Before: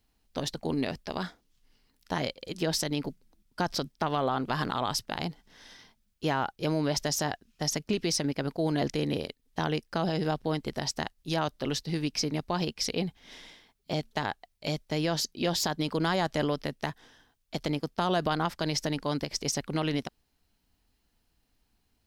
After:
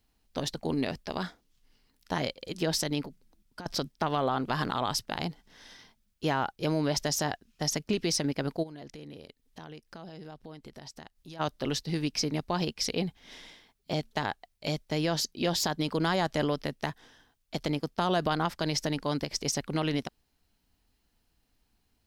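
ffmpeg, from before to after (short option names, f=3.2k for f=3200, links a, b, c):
-filter_complex "[0:a]asettb=1/sr,asplit=3[a][b][c];[a]atrim=end=3.014[d];[b]atrim=start=3.01:end=3.66,asetpts=PTS-STARTPTS,afade=t=in:d=0.004:c=qsin,afade=t=out:st=0.646:d=0.004:c=qsin,acompressor=threshold=-37dB:ratio=16:attack=3.2:release=140:knee=1:detection=peak[e];[c]atrim=start=3.656[f];[d][e]acrossfade=d=0.004:c1=hsin:c2=qsin[g];[g][f]acrossfade=d=0.004:c1=qsin:c2=hsin,asplit=3[h][i][j];[h]afade=t=out:st=8.62:d=0.02[k];[i]acompressor=threshold=-47dB:ratio=3:attack=3.2:release=140:knee=1:detection=peak,afade=t=in:st=8.62:d=0.02,afade=t=out:st=11.39:d=0.02[l];[j]afade=t=in:st=11.39:d=0.02[m];[k][l][m]amix=inputs=3:normalize=0"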